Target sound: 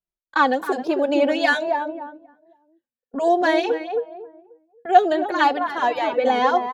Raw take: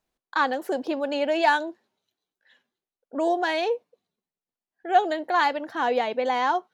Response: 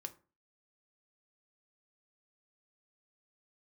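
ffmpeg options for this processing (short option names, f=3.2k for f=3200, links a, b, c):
-filter_complex "[0:a]agate=range=-22dB:threshold=-42dB:ratio=16:detection=peak,lowshelf=f=190:g=8.5,asplit=2[a][b];[b]adelay=268,lowpass=f=830:p=1,volume=-4dB,asplit=2[c][d];[d]adelay=268,lowpass=f=830:p=1,volume=0.35,asplit=2[e][f];[f]adelay=268,lowpass=f=830:p=1,volume=0.35,asplit=2[g][h];[h]adelay=268,lowpass=f=830:p=1,volume=0.35[i];[a][c][e][g][i]amix=inputs=5:normalize=0,asplit=2[j][k];[k]adelay=2.5,afreqshift=-1.2[l];[j][l]amix=inputs=2:normalize=1,volume=6dB"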